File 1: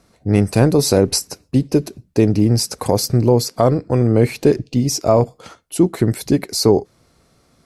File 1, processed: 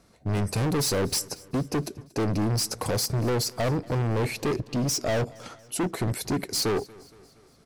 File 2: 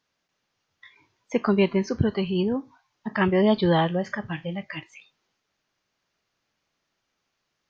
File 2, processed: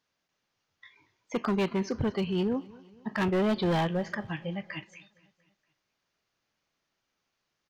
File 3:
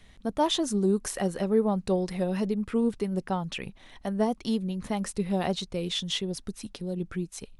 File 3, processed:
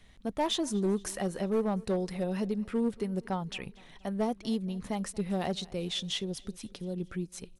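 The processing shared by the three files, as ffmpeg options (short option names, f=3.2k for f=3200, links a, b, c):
-filter_complex "[0:a]asoftclip=type=hard:threshold=-19.5dB,asplit=2[a][b];[b]aecho=0:1:233|466|699|932:0.0708|0.0382|0.0206|0.0111[c];[a][c]amix=inputs=2:normalize=0,volume=-3.5dB"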